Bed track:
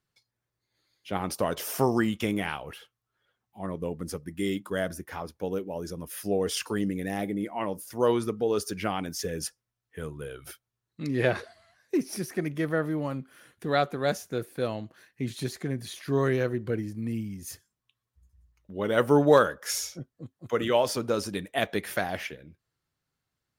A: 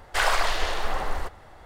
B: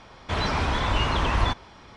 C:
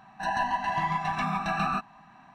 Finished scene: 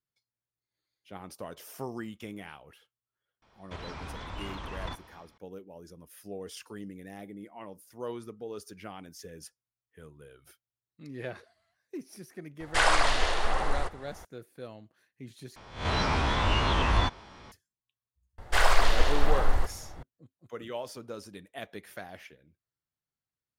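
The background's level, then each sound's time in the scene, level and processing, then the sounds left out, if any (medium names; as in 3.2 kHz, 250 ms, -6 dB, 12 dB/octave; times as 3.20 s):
bed track -13.5 dB
3.42 s: add B -17.5 dB + transient shaper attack +4 dB, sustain +10 dB
12.60 s: add A -0.5 dB + careless resampling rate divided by 2×, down none, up filtered
15.56 s: replace with B -3.5 dB + reverse spectral sustain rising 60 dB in 0.44 s
18.38 s: add A -2.5 dB + bass shelf 290 Hz +8.5 dB
not used: C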